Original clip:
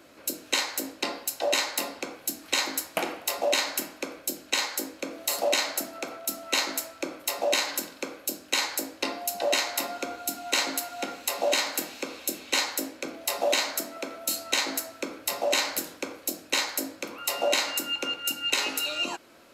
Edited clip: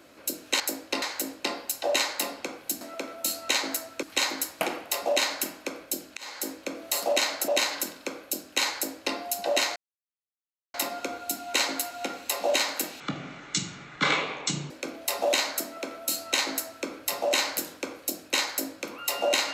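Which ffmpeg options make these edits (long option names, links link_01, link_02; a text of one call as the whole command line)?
ffmpeg -i in.wav -filter_complex "[0:a]asplit=10[link_01][link_02][link_03][link_04][link_05][link_06][link_07][link_08][link_09][link_10];[link_01]atrim=end=0.602[link_11];[link_02]atrim=start=8.698:end=9.122[link_12];[link_03]atrim=start=0.598:end=2.392[link_13];[link_04]atrim=start=13.838:end=15.062[link_14];[link_05]atrim=start=2.388:end=4.53,asetpts=PTS-STARTPTS,afade=type=out:start_time=2.138:duration=0.004:curve=hsin[link_15];[link_06]atrim=start=4.53:end=5.842,asetpts=PTS-STARTPTS,afade=type=in:duration=0.31[link_16];[link_07]atrim=start=7.438:end=9.72,asetpts=PTS-STARTPTS,afade=type=out:start_time=2.278:duration=0.004:curve=hsin,apad=pad_dur=0.98[link_17];[link_08]atrim=start=9.72:end=11.984,asetpts=PTS-STARTPTS,afade=type=in:duration=0.004:curve=hsin[link_18];[link_09]atrim=start=11.98:end=12.9,asetpts=PTS-STARTPTS,asetrate=23814,aresample=44100,atrim=end_sample=75133,asetpts=PTS-STARTPTS[link_19];[link_10]atrim=start=12.896[link_20];[link_11][link_12]acrossfade=duration=0.004:curve1=hsin:curve2=hsin[link_21];[link_21][link_13]acrossfade=duration=0.004:curve1=hsin:curve2=hsin[link_22];[link_22][link_14]acrossfade=duration=0.004:curve1=hsin:curve2=hsin[link_23];[link_15][link_16]concat=n=2:v=0:a=1[link_24];[link_23][link_24]acrossfade=duration=0.004:curve1=hsin:curve2=hsin[link_25];[link_17][link_18]concat=n=2:v=0:a=1[link_26];[link_25][link_26]acrossfade=duration=0.004:curve1=hsin:curve2=hsin[link_27];[link_27][link_19]acrossfade=duration=0.004:curve1=hsin:curve2=hsin[link_28];[link_28][link_20]acrossfade=duration=0.004:curve1=hsin:curve2=hsin" out.wav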